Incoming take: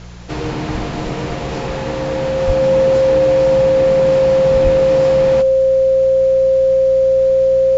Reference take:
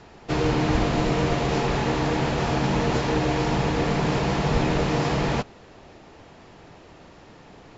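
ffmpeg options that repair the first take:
-filter_complex "[0:a]bandreject=f=59.2:t=h:w=4,bandreject=f=118.4:t=h:w=4,bandreject=f=177.6:t=h:w=4,bandreject=f=530:w=30,asplit=3[a][b][c];[a]afade=t=out:st=2.46:d=0.02[d];[b]highpass=f=140:w=0.5412,highpass=f=140:w=1.3066,afade=t=in:st=2.46:d=0.02,afade=t=out:st=2.58:d=0.02[e];[c]afade=t=in:st=2.58:d=0.02[f];[d][e][f]amix=inputs=3:normalize=0,asplit=3[g][h][i];[g]afade=t=out:st=4.63:d=0.02[j];[h]highpass=f=140:w=0.5412,highpass=f=140:w=1.3066,afade=t=in:st=4.63:d=0.02,afade=t=out:st=4.75:d=0.02[k];[i]afade=t=in:st=4.75:d=0.02[l];[j][k][l]amix=inputs=3:normalize=0,agate=range=-21dB:threshold=-15dB"

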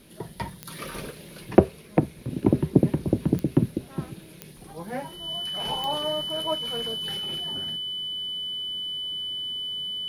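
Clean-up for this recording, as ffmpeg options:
-af "adeclick=t=4,bandreject=f=3k:w=30"

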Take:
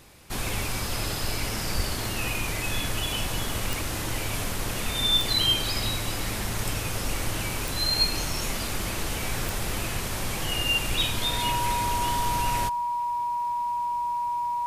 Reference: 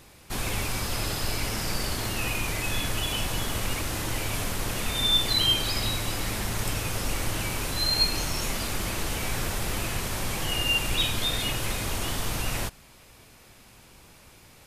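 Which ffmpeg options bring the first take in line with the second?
-filter_complex "[0:a]adeclick=t=4,bandreject=f=960:w=30,asplit=3[a][b][c];[a]afade=t=out:st=1.76:d=0.02[d];[b]highpass=f=140:w=0.5412,highpass=f=140:w=1.3066,afade=t=in:st=1.76:d=0.02,afade=t=out:st=1.88:d=0.02[e];[c]afade=t=in:st=1.88:d=0.02[f];[d][e][f]amix=inputs=3:normalize=0"

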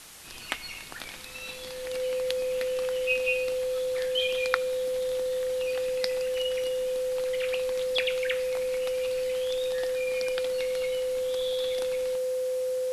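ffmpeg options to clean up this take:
-af "adeclick=t=4,bandreject=f=510:w=30,afwtdn=0.005"

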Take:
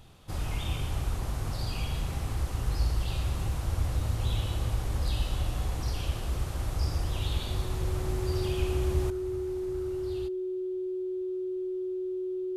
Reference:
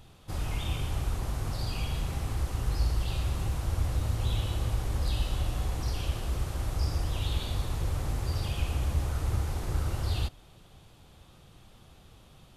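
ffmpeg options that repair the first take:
-af "bandreject=f=370:w=30,asetnsamples=n=441:p=0,asendcmd='9.1 volume volume 12dB',volume=0dB"

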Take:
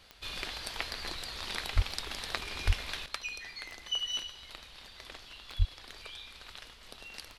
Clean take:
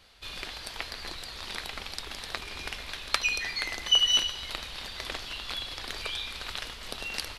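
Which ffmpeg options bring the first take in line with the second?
-filter_complex "[0:a]adeclick=t=4,asplit=3[a][b][c];[a]afade=t=out:st=1.75:d=0.02[d];[b]highpass=f=140:w=0.5412,highpass=f=140:w=1.3066,afade=t=in:st=1.75:d=0.02,afade=t=out:st=1.87:d=0.02[e];[c]afade=t=in:st=1.87:d=0.02[f];[d][e][f]amix=inputs=3:normalize=0,asplit=3[g][h][i];[g]afade=t=out:st=2.66:d=0.02[j];[h]highpass=f=140:w=0.5412,highpass=f=140:w=1.3066,afade=t=in:st=2.66:d=0.02,afade=t=out:st=2.78:d=0.02[k];[i]afade=t=in:st=2.78:d=0.02[l];[j][k][l]amix=inputs=3:normalize=0,asplit=3[m][n][o];[m]afade=t=out:st=5.58:d=0.02[p];[n]highpass=f=140:w=0.5412,highpass=f=140:w=1.3066,afade=t=in:st=5.58:d=0.02,afade=t=out:st=5.7:d=0.02[q];[o]afade=t=in:st=5.7:d=0.02[r];[p][q][r]amix=inputs=3:normalize=0,asetnsamples=n=441:p=0,asendcmd='3.06 volume volume 11.5dB',volume=0dB"

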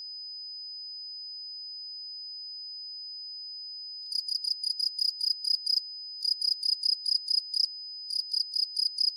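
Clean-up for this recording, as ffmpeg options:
-af "bandreject=f=5k:w=30"

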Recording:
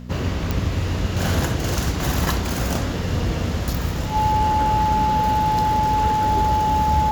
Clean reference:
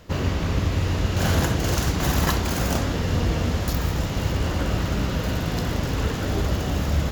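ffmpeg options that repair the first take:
-af "adeclick=t=4,bandreject=f=61:t=h:w=4,bandreject=f=122:t=h:w=4,bandreject=f=183:t=h:w=4,bandreject=f=244:t=h:w=4,bandreject=f=860:w=30"

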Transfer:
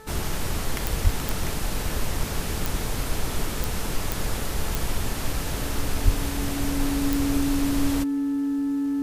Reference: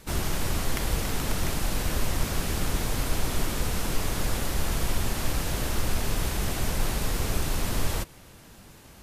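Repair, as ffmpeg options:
-filter_complex "[0:a]adeclick=t=4,bandreject=f=436.5:t=h:w=4,bandreject=f=873:t=h:w=4,bandreject=f=1.3095k:t=h:w=4,bandreject=f=1.746k:t=h:w=4,bandreject=f=280:w=30,asplit=3[a][b][c];[a]afade=t=out:st=1.03:d=0.02[d];[b]highpass=f=140:w=0.5412,highpass=f=140:w=1.3066,afade=t=in:st=1.03:d=0.02,afade=t=out:st=1.15:d=0.02[e];[c]afade=t=in:st=1.15:d=0.02[f];[d][e][f]amix=inputs=3:normalize=0,asplit=3[g][h][i];[g]afade=t=out:st=6.04:d=0.02[j];[h]highpass=f=140:w=0.5412,highpass=f=140:w=1.3066,afade=t=in:st=6.04:d=0.02,afade=t=out:st=6.16:d=0.02[k];[i]afade=t=in:st=6.16:d=0.02[l];[j][k][l]amix=inputs=3:normalize=0"

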